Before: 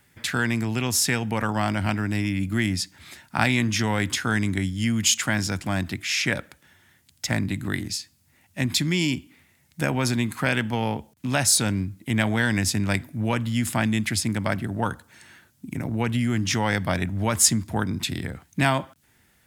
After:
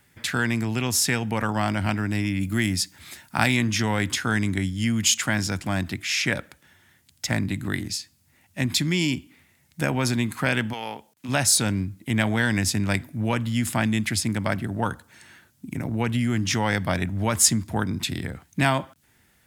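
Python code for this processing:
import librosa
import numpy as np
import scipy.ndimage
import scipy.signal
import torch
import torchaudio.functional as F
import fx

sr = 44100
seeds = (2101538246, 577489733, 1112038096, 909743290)

y = fx.high_shelf(x, sr, hz=7400.0, db=8.0, at=(2.41, 3.57))
y = fx.highpass(y, sr, hz=fx.line((10.72, 1400.0), (11.28, 450.0)), slope=6, at=(10.72, 11.28), fade=0.02)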